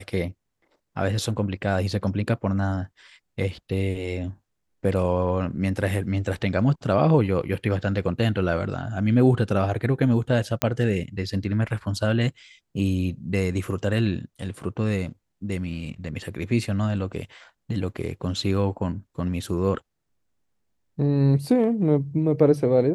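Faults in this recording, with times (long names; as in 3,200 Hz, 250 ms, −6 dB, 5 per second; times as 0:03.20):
0:10.62: click −5 dBFS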